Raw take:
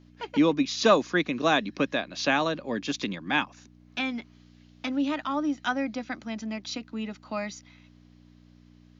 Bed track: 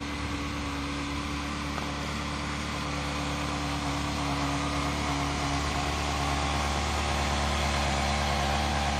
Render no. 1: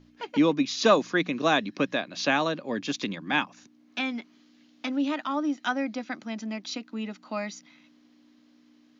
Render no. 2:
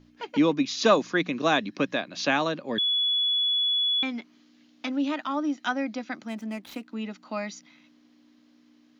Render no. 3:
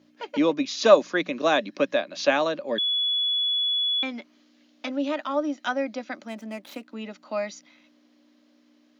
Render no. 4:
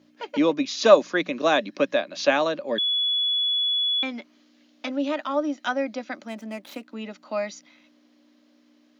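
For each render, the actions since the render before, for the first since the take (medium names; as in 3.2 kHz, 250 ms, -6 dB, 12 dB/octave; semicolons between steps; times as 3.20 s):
de-hum 60 Hz, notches 3
2.78–4.03 s: bleep 3.4 kHz -21.5 dBFS; 6.28–6.88 s: median filter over 9 samples
high-pass 230 Hz 12 dB/octave; peaking EQ 580 Hz +11 dB 0.22 oct
trim +1 dB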